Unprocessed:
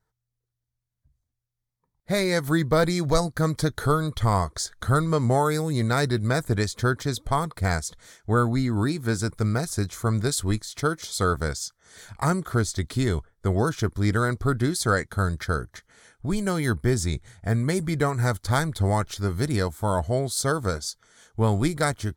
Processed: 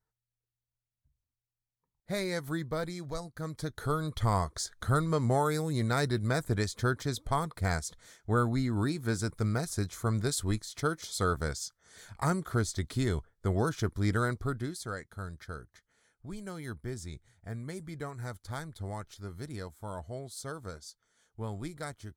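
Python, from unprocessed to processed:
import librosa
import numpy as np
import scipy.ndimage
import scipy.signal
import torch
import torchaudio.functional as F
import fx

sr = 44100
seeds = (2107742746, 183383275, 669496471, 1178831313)

y = fx.gain(x, sr, db=fx.line((2.24, -9.5), (3.24, -17.0), (4.17, -6.0), (14.26, -6.0), (14.89, -16.0)))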